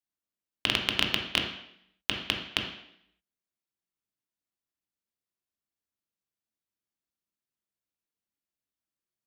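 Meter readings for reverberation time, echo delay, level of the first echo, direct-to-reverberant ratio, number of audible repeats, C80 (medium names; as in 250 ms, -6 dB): 0.70 s, no echo, no echo, 1.5 dB, no echo, 9.0 dB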